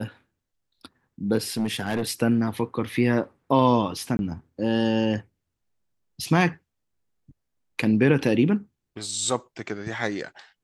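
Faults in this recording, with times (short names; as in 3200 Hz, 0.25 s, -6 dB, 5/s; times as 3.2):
1.57–2.03 clipped -20.5 dBFS
4.17–4.19 gap 21 ms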